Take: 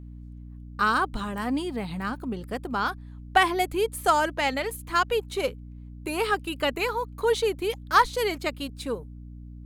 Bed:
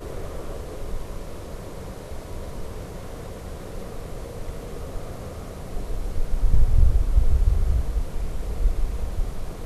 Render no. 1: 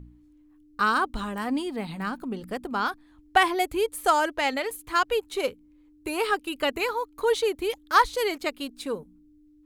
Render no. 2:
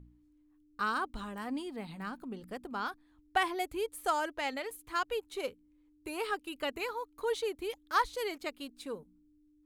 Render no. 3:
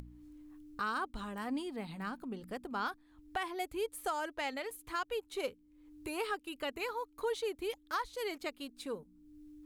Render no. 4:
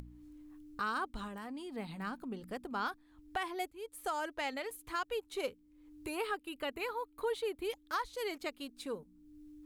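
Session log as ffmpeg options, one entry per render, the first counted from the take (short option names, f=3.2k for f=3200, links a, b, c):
-af "bandreject=f=60:t=h:w=4,bandreject=f=120:t=h:w=4,bandreject=f=180:t=h:w=4,bandreject=f=240:t=h:w=4"
-af "volume=-9.5dB"
-af "acompressor=mode=upward:threshold=-42dB:ratio=2.5,alimiter=level_in=1.5dB:limit=-24dB:level=0:latency=1:release=414,volume=-1.5dB"
-filter_complex "[0:a]asettb=1/sr,asplit=3[a][b][c];[a]atrim=end=1.274[d];[b]atrim=start=1.27:end=1.76,asetpts=PTS-STARTPTS,afade=t=in:d=0.004:c=qsin,afade=t=out:st=0.486:d=0.004:c=qsin,acompressor=threshold=-41dB:ratio=5:attack=3.2:release=140:knee=1:detection=peak[e];[c]atrim=start=1.756[f];[d][e]acrossfade=d=0.004:c1=hsin:c2=qsin[g];[g][f]acrossfade=d=0.004:c1=qsin:c2=hsin,asettb=1/sr,asplit=3[h][i][j];[h]atrim=end=6.154[k];[i]atrim=start=6.15:end=7.65,asetpts=PTS-STARTPTS,afade=t=in:d=0.004:c=qsin,afade=t=out:st=1.496:d=0.004:c=qsin,equalizer=f=6k:t=o:w=0.58:g=-9[l];[j]atrim=start=7.646[m];[k][l]acrossfade=d=0.004:c1=hsin:c2=qsin[n];[n][m]acrossfade=d=0.004:c1=qsin:c2=hsin,asplit=2[o][p];[o]atrim=end=3.71,asetpts=PTS-STARTPTS,afade=t=out:st=3.706:d=0.004:c=hsin:silence=0.11885[q];[p]atrim=start=3.71,asetpts=PTS-STARTPTS,afade=t=in:d=0.44:silence=0.11885[r];[q][r]concat=n=2:v=0:a=1"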